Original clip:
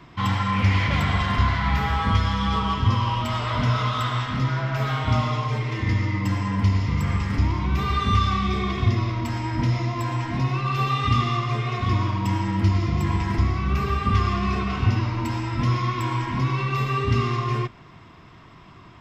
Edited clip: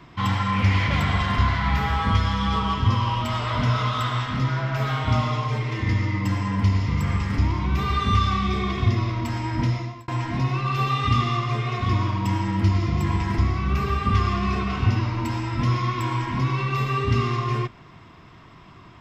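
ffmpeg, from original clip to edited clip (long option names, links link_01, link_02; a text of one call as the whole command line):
ffmpeg -i in.wav -filter_complex "[0:a]asplit=2[link_01][link_02];[link_01]atrim=end=10.08,asetpts=PTS-STARTPTS,afade=type=out:start_time=9.65:duration=0.43[link_03];[link_02]atrim=start=10.08,asetpts=PTS-STARTPTS,afade=type=in:duration=0.004:curve=hsin[link_04];[link_03][link_04]concat=n=2:v=0:a=1" out.wav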